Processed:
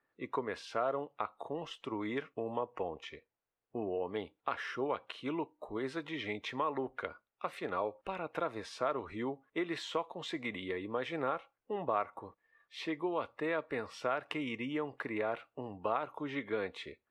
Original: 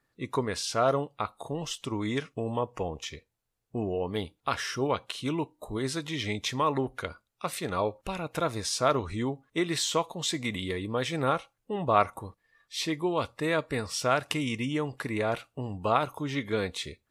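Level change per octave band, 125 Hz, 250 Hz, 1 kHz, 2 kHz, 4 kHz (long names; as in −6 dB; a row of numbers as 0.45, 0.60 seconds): −15.5, −7.5, −7.5, −6.0, −12.0 decibels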